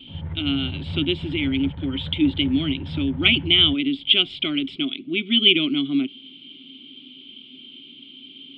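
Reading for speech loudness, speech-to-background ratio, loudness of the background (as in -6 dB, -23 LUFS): -20.5 LUFS, 12.5 dB, -33.0 LUFS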